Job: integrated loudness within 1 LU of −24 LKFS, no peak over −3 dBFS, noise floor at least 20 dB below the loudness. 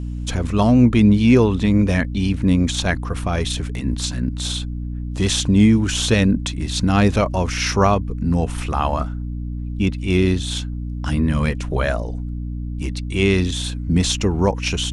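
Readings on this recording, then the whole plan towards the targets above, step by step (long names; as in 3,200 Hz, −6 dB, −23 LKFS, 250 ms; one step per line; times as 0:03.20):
mains hum 60 Hz; hum harmonics up to 300 Hz; level of the hum −24 dBFS; integrated loudness −19.5 LKFS; sample peak −2.5 dBFS; target loudness −24.0 LKFS
→ hum removal 60 Hz, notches 5
level −4.5 dB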